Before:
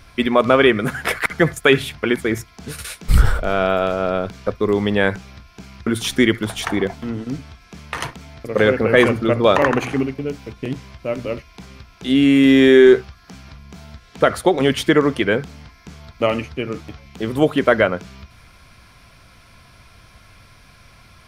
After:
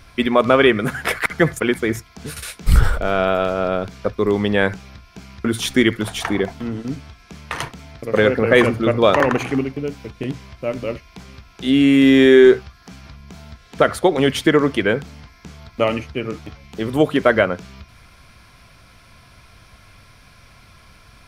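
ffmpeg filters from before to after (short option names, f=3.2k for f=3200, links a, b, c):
-filter_complex "[0:a]asplit=2[a][b];[a]atrim=end=1.602[c];[b]atrim=start=2.018[d];[c][d]acrossfade=d=0.004:c1=hsin:c2=hsin"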